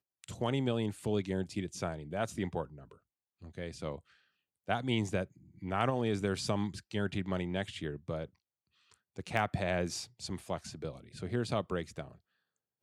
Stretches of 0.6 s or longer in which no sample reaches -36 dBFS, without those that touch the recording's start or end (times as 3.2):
2.63–3.58
3.96–4.69
8.25–9.18